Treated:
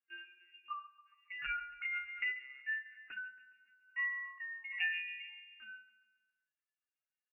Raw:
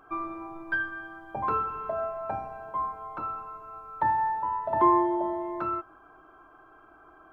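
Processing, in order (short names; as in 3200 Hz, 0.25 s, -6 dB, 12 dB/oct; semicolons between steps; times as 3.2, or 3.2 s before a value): per-bin expansion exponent 2; Doppler pass-by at 2.59, 11 m/s, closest 4.1 m; LPC vocoder at 8 kHz pitch kept; feedback echo 0.138 s, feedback 52%, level -17 dB; inverted band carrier 2800 Hz; low shelf 120 Hz +5.5 dB; gain +2 dB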